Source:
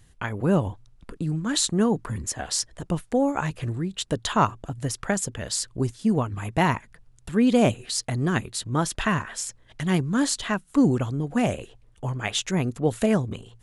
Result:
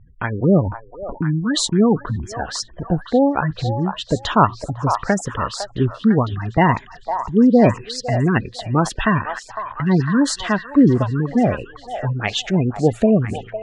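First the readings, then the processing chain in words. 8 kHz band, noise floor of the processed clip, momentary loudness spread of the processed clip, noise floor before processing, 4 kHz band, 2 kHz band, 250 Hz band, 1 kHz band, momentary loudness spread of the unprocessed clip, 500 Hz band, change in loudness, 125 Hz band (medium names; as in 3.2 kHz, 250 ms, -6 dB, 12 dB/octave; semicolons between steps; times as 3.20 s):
-2.0 dB, -43 dBFS, 11 LU, -56 dBFS, +3.0 dB, +5.5 dB, +7.0 dB, +7.5 dB, 10 LU, +7.0 dB, +6.5 dB, +7.0 dB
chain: spectral gate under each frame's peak -20 dB strong; level-controlled noise filter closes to 1.6 kHz, open at -17.5 dBFS; treble shelf 8.3 kHz -10 dB; repeats whose band climbs or falls 504 ms, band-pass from 870 Hz, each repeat 0.7 oct, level -4.5 dB; trim +7 dB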